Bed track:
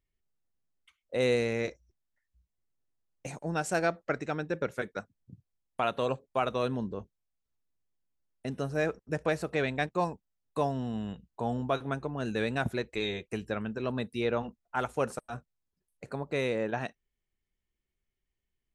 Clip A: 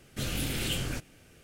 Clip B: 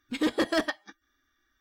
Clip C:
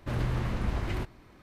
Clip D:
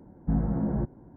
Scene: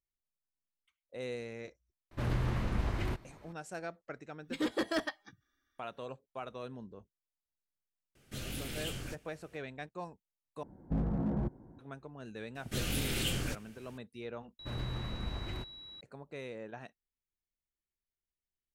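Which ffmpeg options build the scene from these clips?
ffmpeg -i bed.wav -i cue0.wav -i cue1.wav -i cue2.wav -i cue3.wav -filter_complex "[3:a]asplit=2[link_01][link_02];[1:a]asplit=2[link_03][link_04];[0:a]volume=-13.5dB[link_05];[4:a]asoftclip=type=hard:threshold=-23.5dB[link_06];[link_02]aeval=exprs='val(0)+0.0112*sin(2*PI*3900*n/s)':channel_layout=same[link_07];[link_05]asplit=3[link_08][link_09][link_10];[link_08]atrim=end=10.634[link_11];[link_06]atrim=end=1.16,asetpts=PTS-STARTPTS,volume=-4.5dB[link_12];[link_09]atrim=start=11.786:end=14.594[link_13];[link_07]atrim=end=1.42,asetpts=PTS-STARTPTS,volume=-8.5dB[link_14];[link_10]atrim=start=16.006[link_15];[link_01]atrim=end=1.42,asetpts=PTS-STARTPTS,volume=-2.5dB,afade=type=in:duration=0.004:curve=hsin,afade=type=out:start_time=1.416:duration=0.004:curve=hsin,adelay=2110[link_16];[2:a]atrim=end=1.6,asetpts=PTS-STARTPTS,volume=-7dB,afade=type=in:duration=0.004:curve=hsin,afade=type=out:start_time=1.596:duration=0.004:curve=hsin,adelay=4390[link_17];[link_03]atrim=end=1.43,asetpts=PTS-STARTPTS,volume=-8.5dB,afade=type=in:duration=0.004:curve=hsin,afade=type=out:start_time=1.426:duration=0.004:curve=hsin,adelay=8150[link_18];[link_04]atrim=end=1.43,asetpts=PTS-STARTPTS,volume=-2dB,afade=type=in:duration=0.004:curve=hsin,afade=type=out:start_time=1.426:duration=0.004:curve=hsin,adelay=12550[link_19];[link_11][link_12]acrossfade=duration=0.004:curve1=hsin:curve2=hsin[link_20];[link_20][link_13]acrossfade=duration=0.004:curve1=hsin:curve2=hsin[link_21];[link_21][link_14]acrossfade=duration=0.004:curve1=hsin:curve2=hsin[link_22];[link_22][link_15]acrossfade=duration=0.004:curve1=hsin:curve2=hsin[link_23];[link_23][link_16][link_17][link_18][link_19]amix=inputs=5:normalize=0" out.wav

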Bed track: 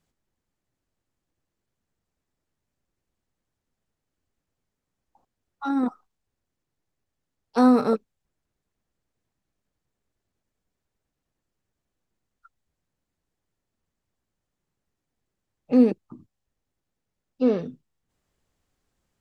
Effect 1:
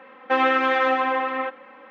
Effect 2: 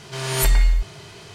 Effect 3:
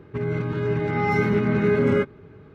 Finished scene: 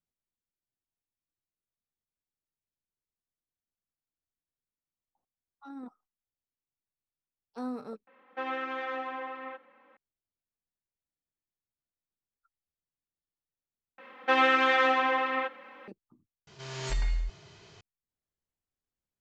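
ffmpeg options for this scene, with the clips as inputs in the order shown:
ffmpeg -i bed.wav -i cue0.wav -i cue1.wav -filter_complex "[1:a]asplit=2[link_01][link_02];[0:a]volume=-19.5dB[link_03];[link_02]highshelf=frequency=2800:gain=11.5[link_04];[2:a]aresample=16000,aresample=44100[link_05];[link_03]asplit=4[link_06][link_07][link_08][link_09];[link_06]atrim=end=8.074[link_10];[link_01]atrim=end=1.9,asetpts=PTS-STARTPTS,volume=-15dB[link_11];[link_07]atrim=start=9.966:end=13.984[link_12];[link_04]atrim=end=1.9,asetpts=PTS-STARTPTS,volume=-5.5dB[link_13];[link_08]atrim=start=15.876:end=16.474[link_14];[link_05]atrim=end=1.34,asetpts=PTS-STARTPTS,volume=-13dB[link_15];[link_09]atrim=start=17.806[link_16];[link_10][link_11]acrossfade=duration=0.004:curve1=hsin:curve2=hsin[link_17];[link_17][link_12]acrossfade=duration=0.004:curve1=hsin:curve2=hsin[link_18];[link_18][link_13]acrossfade=duration=0.004:curve1=hsin:curve2=hsin[link_19];[link_19][link_14]acrossfade=duration=0.004:curve1=hsin:curve2=hsin[link_20];[link_20][link_15]acrossfade=duration=0.004:curve1=hsin:curve2=hsin[link_21];[link_21][link_16]acrossfade=duration=0.004:curve1=hsin:curve2=hsin" out.wav

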